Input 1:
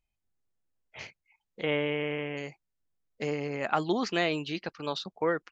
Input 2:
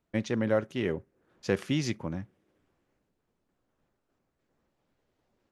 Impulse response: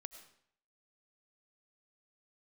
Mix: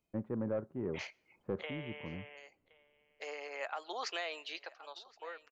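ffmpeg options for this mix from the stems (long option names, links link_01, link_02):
-filter_complex "[0:a]highpass=frequency=540:width=0.5412,highpass=frequency=540:width=1.3066,volume=8.5dB,afade=type=out:start_time=1.51:duration=0.2:silence=0.237137,afade=type=in:start_time=2.84:duration=0.76:silence=0.316228,afade=type=out:start_time=4.51:duration=0.29:silence=0.266073,asplit=4[link_01][link_02][link_03][link_04];[link_02]volume=-14dB[link_05];[link_03]volume=-24dB[link_06];[1:a]lowpass=frequency=1200:width=0.5412,lowpass=frequency=1200:width=1.3066,asoftclip=type=tanh:threshold=-18.5dB,volume=-6.5dB[link_07];[link_04]apad=whole_len=243067[link_08];[link_07][link_08]sidechaincompress=threshold=-42dB:ratio=8:attack=7.3:release=1340[link_09];[2:a]atrim=start_sample=2205[link_10];[link_05][link_10]afir=irnorm=-1:irlink=0[link_11];[link_06]aecho=0:1:1070:1[link_12];[link_01][link_09][link_11][link_12]amix=inputs=4:normalize=0,alimiter=level_in=3dB:limit=-24dB:level=0:latency=1:release=341,volume=-3dB"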